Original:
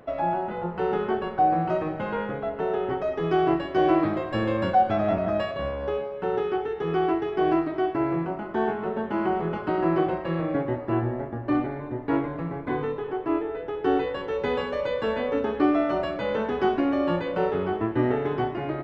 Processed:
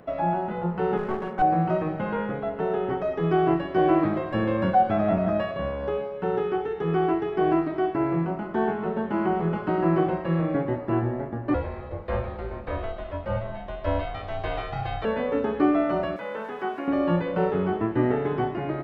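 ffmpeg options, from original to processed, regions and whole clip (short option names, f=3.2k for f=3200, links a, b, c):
-filter_complex "[0:a]asettb=1/sr,asplit=3[a][b][c];[a]atrim=end=0.974[d];[b]atrim=start=0.97:end=1.42,asetpts=PTS-STARTPTS,afade=t=in:d=0.004:c=qsin,afade=t=out:st=0.446:d=0.004:c=qsin,highpass=120,lowpass=2.3k,aeval=exprs='clip(val(0),-1,0.0266)':c=same[e];[c]atrim=start=1.416[f];[d][e]acrossfade=d=0.004:c1=hsin:c2=qsin[g];[g][f]acrossfade=d=0.004:c1=qsin:c2=hsin,asettb=1/sr,asplit=3[h][i][j];[h]atrim=end=11.544[k];[i]atrim=start=11.54:end=15.05,asetpts=PTS-STARTPTS,afade=t=in:d=0.004:c=qsin,afade=t=out:st=3.506:d=0.004:c=qsin,equalizer=f=4k:w=1.4:g=9.5,aeval=exprs='val(0)*sin(2*PI*340*n/s)':c=same,afreqshift=-120[l];[j]atrim=start=15.046[m];[k][l]acrossfade=d=0.004:c1=hsin:c2=qsin[n];[n][m]acrossfade=d=0.004:c1=qsin:c2=hsin,asettb=1/sr,asplit=3[o][p][q];[o]atrim=end=16.164[r];[p]atrim=start=16.16:end=16.88,asetpts=PTS-STARTPTS,afade=t=in:d=0.004:c=qsin,afade=t=out:st=0.716:d=0.004:c=qsin,acrossover=split=2800[s][t];[t]acompressor=threshold=-58dB:ratio=4:attack=1:release=60[u];[s][u]amix=inputs=2:normalize=0,highpass=f=940:p=1,aeval=exprs='sgn(val(0))*max(abs(val(0))-0.0015,0)':c=same[v];[q]atrim=start=16.876[w];[r][v]acrossfade=d=0.004:c1=hsin:c2=qsin[x];[x][w]acrossfade=d=0.004:c1=qsin:c2=hsin,acrossover=split=3000[y][z];[z]acompressor=threshold=-58dB:ratio=4:attack=1:release=60[aa];[y][aa]amix=inputs=2:normalize=0,equalizer=f=180:t=o:w=0.43:g=7"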